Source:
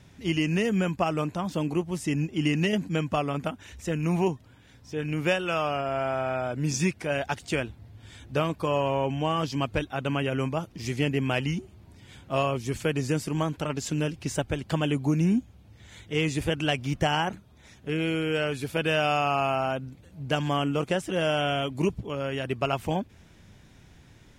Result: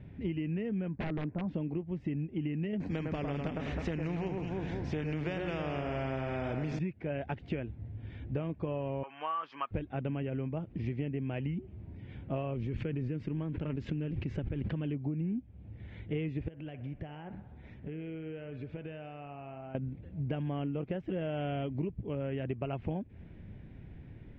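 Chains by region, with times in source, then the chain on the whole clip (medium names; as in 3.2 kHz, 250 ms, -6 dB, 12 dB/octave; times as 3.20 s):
0.88–1.48 s: low-pass 1.8 kHz 24 dB/octave + bass shelf 110 Hz -3 dB + integer overflow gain 21.5 dB
2.80–6.79 s: resonant high shelf 4.4 kHz +13.5 dB, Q 1.5 + echo whose repeats swap between lows and highs 105 ms, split 1.9 kHz, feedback 54%, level -6 dB + spectrum-flattening compressor 2:1
9.03–9.71 s: resonant high-pass 1.2 kHz, resonance Q 6 + dynamic bell 2.1 kHz, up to -5 dB, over -34 dBFS, Q 0.89
12.54–14.94 s: companding laws mixed up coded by A + peaking EQ 710 Hz -7.5 dB 0.62 oct + swell ahead of each attack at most 22 dB/s
16.48–19.75 s: compression 8:1, threshold -41 dBFS + feedback echo behind a band-pass 62 ms, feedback 71%, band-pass 1 kHz, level -11 dB
whole clip: low-pass 2.2 kHz 24 dB/octave; peaking EQ 1.2 kHz -14.5 dB 1.7 oct; compression 10:1, threshold -37 dBFS; trim +5.5 dB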